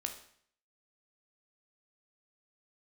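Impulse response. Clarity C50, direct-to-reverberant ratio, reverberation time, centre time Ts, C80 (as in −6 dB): 9.0 dB, 4.0 dB, 0.60 s, 15 ms, 13.0 dB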